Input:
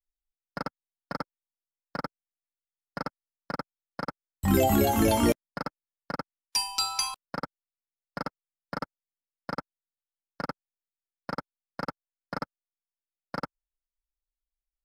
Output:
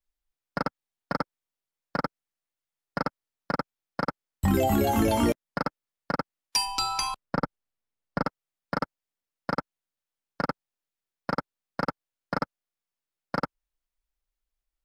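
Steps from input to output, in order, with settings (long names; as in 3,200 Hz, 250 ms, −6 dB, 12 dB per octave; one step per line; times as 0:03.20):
high-shelf EQ 4,300 Hz −5 dB
downward compressor 5 to 1, threshold −26 dBFS, peak gain reduction 7.5 dB
0:06.65–0:08.25: spectral tilt −1.5 dB per octave
level +6 dB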